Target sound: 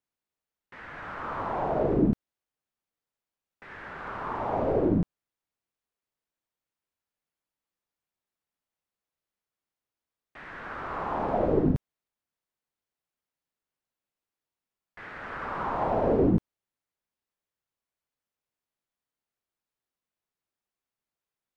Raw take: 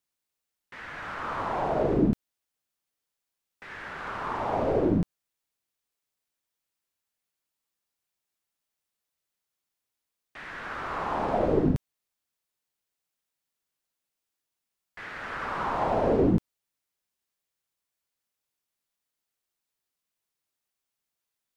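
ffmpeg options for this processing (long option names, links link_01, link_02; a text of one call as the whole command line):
ffmpeg -i in.wav -af "highshelf=frequency=2800:gain=-11.5" out.wav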